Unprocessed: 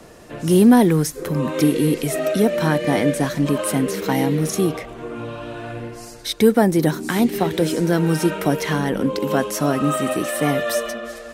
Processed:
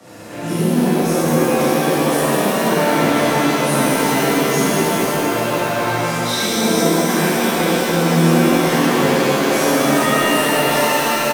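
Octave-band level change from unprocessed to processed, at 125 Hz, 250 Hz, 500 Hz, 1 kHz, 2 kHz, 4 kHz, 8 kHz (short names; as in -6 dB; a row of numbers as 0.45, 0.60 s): +1.5, +1.5, +3.5, +8.0, +8.5, +9.0, +7.0 dB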